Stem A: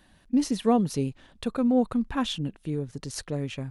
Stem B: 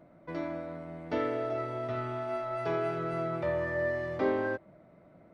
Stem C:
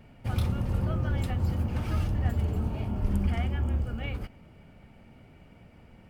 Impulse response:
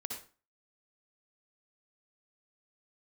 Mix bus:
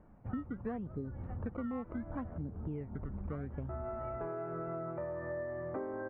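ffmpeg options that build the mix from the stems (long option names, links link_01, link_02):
-filter_complex "[0:a]lowpass=1400,acrusher=samples=19:mix=1:aa=0.000001:lfo=1:lforange=19:lforate=0.71,volume=-1.5dB,asplit=2[link_01][link_02];[1:a]adelay=1550,volume=-2dB,asplit=3[link_03][link_04][link_05];[link_03]atrim=end=2.38,asetpts=PTS-STARTPTS,afade=type=out:start_time=2.376:duration=0.004:curve=hsin[link_06];[link_04]atrim=start=2.38:end=3.69,asetpts=PTS-STARTPTS,volume=0[link_07];[link_05]atrim=start=3.69,asetpts=PTS-STARTPTS,afade=type=in:duration=0.004:curve=hsin[link_08];[link_06][link_07][link_08]concat=n=3:v=0:a=1[link_09];[2:a]volume=-10.5dB[link_10];[link_02]apad=whole_len=303725[link_11];[link_09][link_11]sidechaincompress=threshold=-26dB:ratio=8:attack=16:release=281[link_12];[link_01][link_12][link_10]amix=inputs=3:normalize=0,lowpass=frequency=1500:width=0.5412,lowpass=frequency=1500:width=1.3066,acompressor=threshold=-36dB:ratio=10"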